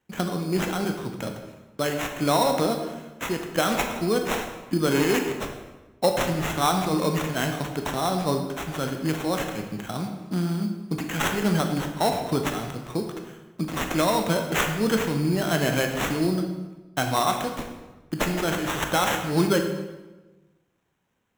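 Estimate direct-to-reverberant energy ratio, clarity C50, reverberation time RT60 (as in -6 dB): 4.0 dB, 6.0 dB, 1.2 s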